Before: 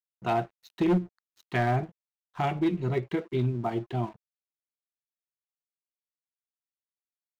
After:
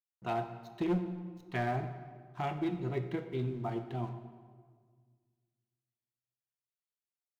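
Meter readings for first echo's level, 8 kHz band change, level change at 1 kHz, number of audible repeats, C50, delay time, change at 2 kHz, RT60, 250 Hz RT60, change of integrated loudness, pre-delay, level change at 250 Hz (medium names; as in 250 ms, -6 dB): no echo, no reading, -6.5 dB, no echo, 9.5 dB, no echo, -7.0 dB, 1.7 s, 2.0 s, -7.0 dB, 22 ms, -7.0 dB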